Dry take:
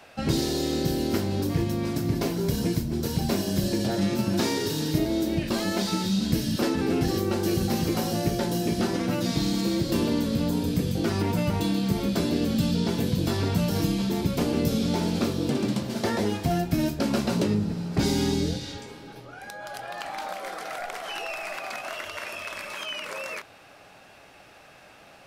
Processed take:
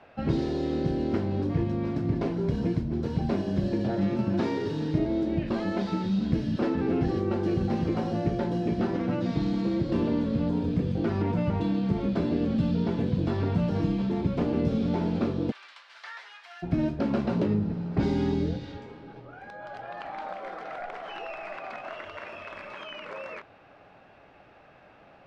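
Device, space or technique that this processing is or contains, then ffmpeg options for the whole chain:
phone in a pocket: -filter_complex "[0:a]asplit=3[link_01][link_02][link_03];[link_01]afade=type=out:start_time=15.5:duration=0.02[link_04];[link_02]highpass=frequency=1300:width=0.5412,highpass=frequency=1300:width=1.3066,afade=type=in:start_time=15.5:duration=0.02,afade=type=out:start_time=16.62:duration=0.02[link_05];[link_03]afade=type=in:start_time=16.62:duration=0.02[link_06];[link_04][link_05][link_06]amix=inputs=3:normalize=0,lowpass=3600,highshelf=frequency=2400:gain=-11.5,volume=-1dB"

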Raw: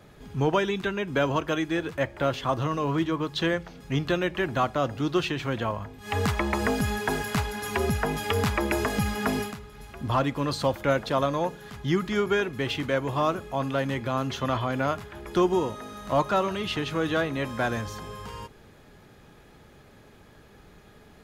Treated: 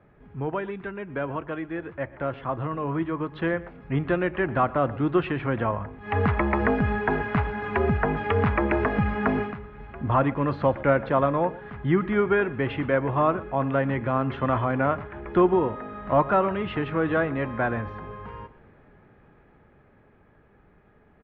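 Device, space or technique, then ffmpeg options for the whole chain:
action camera in a waterproof case: -af "lowpass=frequency=2200:width=0.5412,lowpass=frequency=2200:width=1.3066,aecho=1:1:119:0.106,dynaudnorm=framelen=220:gausssize=31:maxgain=9.5dB,volume=-5.5dB" -ar 48000 -c:a aac -b:a 128k

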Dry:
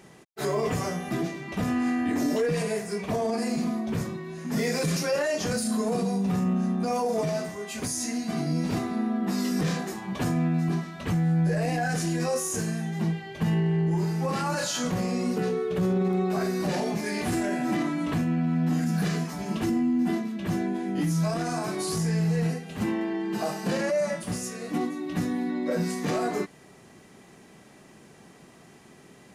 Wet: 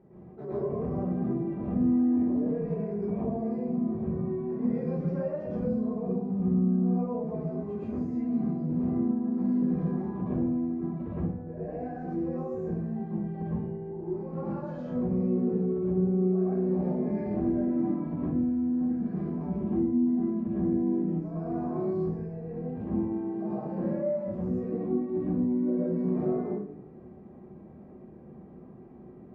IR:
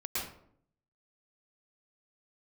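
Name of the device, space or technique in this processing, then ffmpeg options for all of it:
television next door: -filter_complex "[0:a]acompressor=threshold=-31dB:ratio=4,lowpass=560[link_01];[1:a]atrim=start_sample=2205[link_02];[link_01][link_02]afir=irnorm=-1:irlink=0"

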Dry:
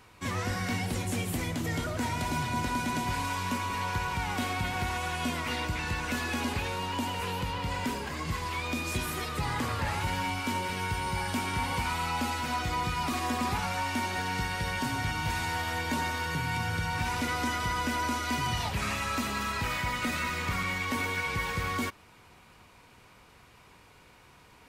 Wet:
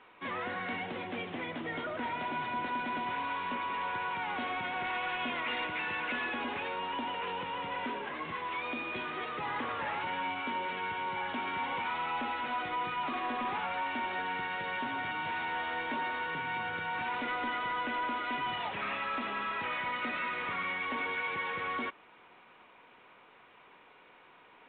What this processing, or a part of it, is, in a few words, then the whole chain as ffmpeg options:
telephone: -filter_complex "[0:a]asettb=1/sr,asplit=3[link_01][link_02][link_03];[link_01]atrim=end=4.844[link_04];[link_02]atrim=start=4.84:end=6.29,asetpts=PTS-STARTPTS,afade=type=in:duration=0.004:curve=qsin,afade=type=out:start_time=1.446:duration=0.004:curve=qsin,equalizer=frequency=2500:width=1:gain=4[link_05];[link_03]atrim=start=6.286[link_06];[link_04][link_05]acrossfade=duration=0.004:curve1=hsin:curve2=qsin[link_07];[link_07][link_06]acrossfade=duration=0.004:curve1=qsin:curve2=hsin,highpass=330,lowpass=3300,asoftclip=type=tanh:threshold=-27.5dB" -ar 8000 -c:a pcm_alaw

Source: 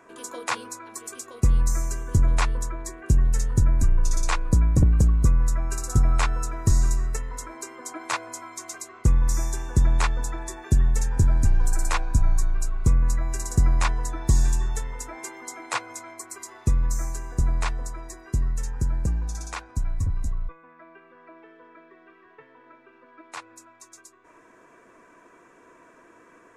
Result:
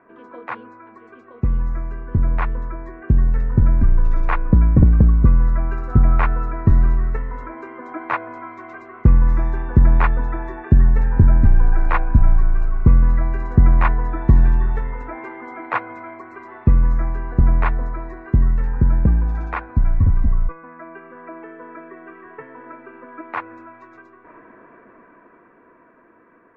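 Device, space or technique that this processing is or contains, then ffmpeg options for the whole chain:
action camera in a waterproof case: -af "lowpass=frequency=2100:width=0.5412,lowpass=frequency=2100:width=1.3066,equalizer=frequency=220:width=2.5:gain=5,dynaudnorm=framelen=270:gausssize=21:maxgain=16dB,volume=-1dB" -ar 44100 -c:a aac -b:a 64k

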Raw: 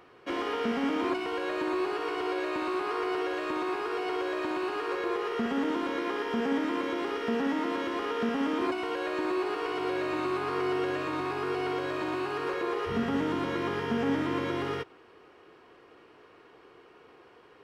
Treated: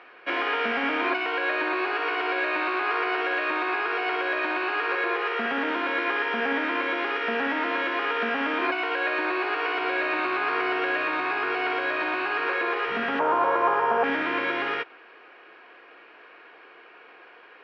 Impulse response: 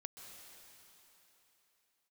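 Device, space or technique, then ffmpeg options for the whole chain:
phone earpiece: -filter_complex "[0:a]asettb=1/sr,asplit=3[link_01][link_02][link_03];[link_01]atrim=end=13.194[link_04];[link_02]atrim=start=13.19:end=14.04,asetpts=PTS-STARTPTS,afade=type=in:duration=0.004:curve=qsin,afade=type=out:start_time=0.846:duration=0.004:curve=qsin,equalizer=frequency=125:width_type=o:width=1:gain=4,equalizer=frequency=250:width_type=o:width=1:gain=-10,equalizer=frequency=500:width_type=o:width=1:gain=7,equalizer=frequency=1000:width_type=o:width=1:gain=12,equalizer=frequency=2000:width_type=o:width=1:gain=-9,equalizer=frequency=4000:width_type=o:width=1:gain=-10[link_05];[link_03]atrim=start=14.036[link_06];[link_04][link_05]acrossfade=duration=0.004:curve1=hsin:curve2=qsin[link_07];[link_07][link_06]acrossfade=duration=0.004:curve1=qsin:curve2=hsin,highpass=390,equalizer=frequency=410:width_type=q:width=4:gain=-4,equalizer=frequency=680:width_type=q:width=4:gain=3,equalizer=frequency=1600:width_type=q:width=4:gain=9,equalizer=frequency=2400:width_type=q:width=4:gain=9,lowpass=frequency=4400:width=0.5412,lowpass=frequency=4400:width=1.3066,volume=4.5dB"

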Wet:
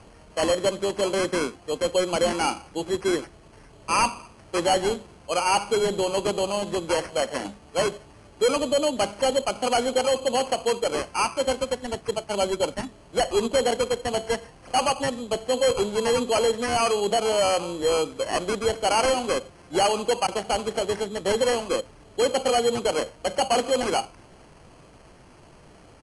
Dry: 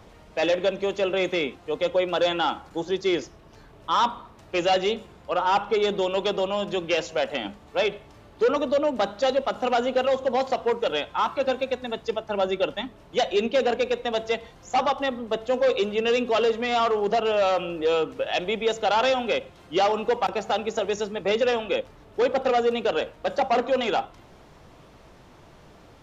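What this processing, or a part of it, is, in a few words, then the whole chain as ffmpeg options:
crushed at another speed: -af "asetrate=88200,aresample=44100,acrusher=samples=6:mix=1:aa=0.000001,asetrate=22050,aresample=44100"

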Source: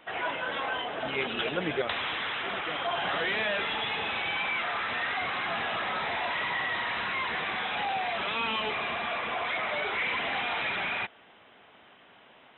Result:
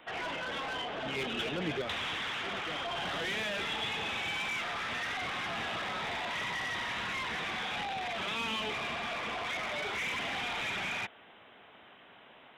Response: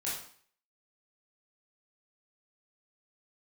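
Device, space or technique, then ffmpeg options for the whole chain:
one-band saturation: -filter_complex "[0:a]acrossover=split=300|3300[link_01][link_02][link_03];[link_02]asoftclip=type=tanh:threshold=-35.5dB[link_04];[link_01][link_04][link_03]amix=inputs=3:normalize=0"

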